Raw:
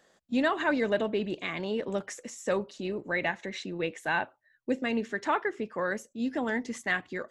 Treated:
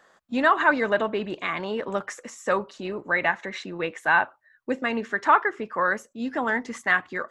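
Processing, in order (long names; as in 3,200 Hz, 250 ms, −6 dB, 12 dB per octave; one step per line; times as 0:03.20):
parametric band 1,200 Hz +12.5 dB 1.4 octaves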